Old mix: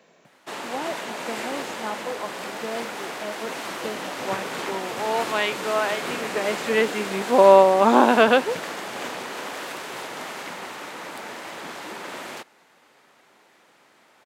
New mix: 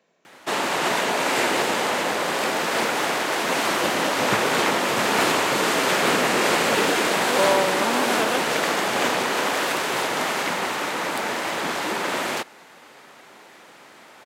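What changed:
speech −9.5 dB
background +10.0 dB

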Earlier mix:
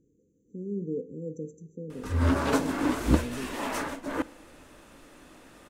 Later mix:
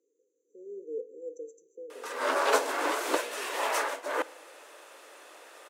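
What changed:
background +4.0 dB
master: add Butterworth high-pass 410 Hz 36 dB per octave

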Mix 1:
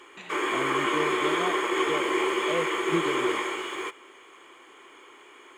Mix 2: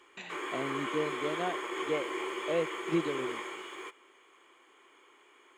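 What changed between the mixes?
background −10.0 dB
master: add low-shelf EQ 150 Hz −6 dB

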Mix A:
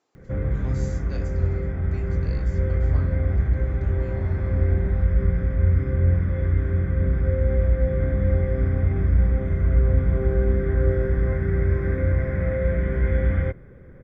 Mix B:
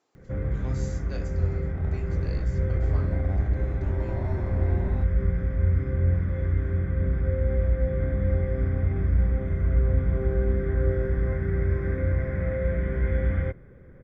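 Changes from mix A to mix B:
first sound −3.5 dB
second sound +6.0 dB

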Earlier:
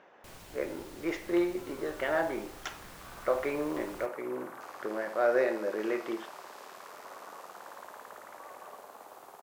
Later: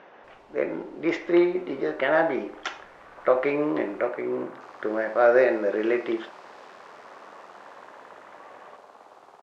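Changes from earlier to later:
speech +8.0 dB
first sound −11.0 dB
master: add low-pass filter 4,800 Hz 12 dB per octave

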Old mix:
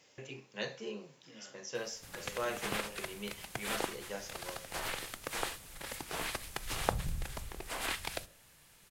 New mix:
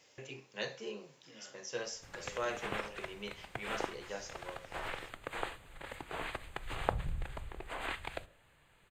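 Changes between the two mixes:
background: add moving average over 8 samples
master: add parametric band 200 Hz −4.5 dB 0.94 octaves

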